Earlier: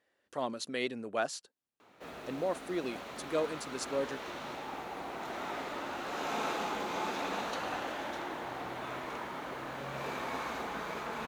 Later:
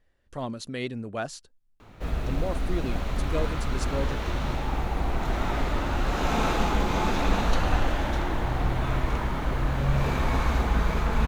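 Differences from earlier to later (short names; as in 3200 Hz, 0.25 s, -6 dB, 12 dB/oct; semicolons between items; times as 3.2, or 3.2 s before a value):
background +7.0 dB; master: remove HPF 320 Hz 12 dB/oct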